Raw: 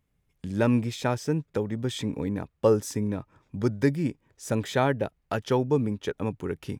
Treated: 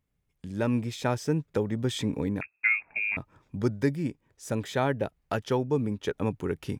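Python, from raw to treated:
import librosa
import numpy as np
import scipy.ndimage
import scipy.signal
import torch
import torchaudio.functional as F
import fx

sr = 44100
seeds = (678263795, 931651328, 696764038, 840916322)

y = fx.freq_invert(x, sr, carrier_hz=2600, at=(2.41, 3.17))
y = fx.rider(y, sr, range_db=3, speed_s=0.5)
y = y * 10.0 ** (-2.0 / 20.0)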